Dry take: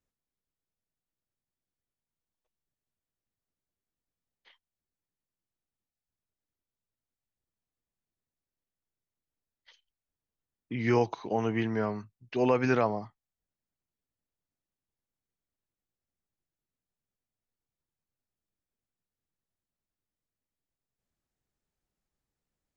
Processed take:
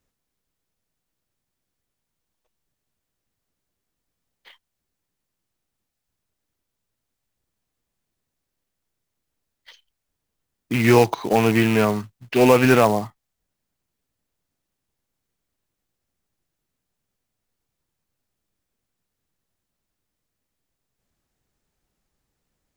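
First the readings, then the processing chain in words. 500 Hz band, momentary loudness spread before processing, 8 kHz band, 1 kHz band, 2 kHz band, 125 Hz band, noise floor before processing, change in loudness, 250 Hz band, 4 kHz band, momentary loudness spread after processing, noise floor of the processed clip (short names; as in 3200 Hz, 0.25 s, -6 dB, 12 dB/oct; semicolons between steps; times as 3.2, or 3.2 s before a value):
+11.0 dB, 12 LU, n/a, +11.0 dB, +12.5 dB, +11.0 dB, under -85 dBFS, +11.5 dB, +11.0 dB, +16.0 dB, 11 LU, -81 dBFS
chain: rattling part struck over -33 dBFS, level -28 dBFS; in parallel at -5 dB: hard clip -23.5 dBFS, distortion -10 dB; on the sum: short-mantissa float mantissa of 2-bit; gain +8 dB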